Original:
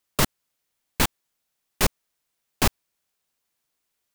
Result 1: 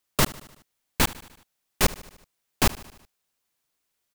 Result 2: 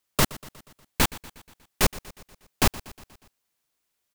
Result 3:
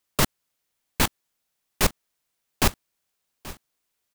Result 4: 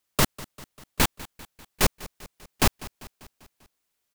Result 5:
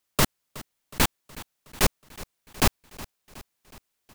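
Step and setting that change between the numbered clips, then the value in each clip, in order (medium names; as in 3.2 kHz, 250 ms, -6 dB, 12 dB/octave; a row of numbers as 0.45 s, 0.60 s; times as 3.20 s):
feedback delay, time: 75 ms, 120 ms, 831 ms, 197 ms, 368 ms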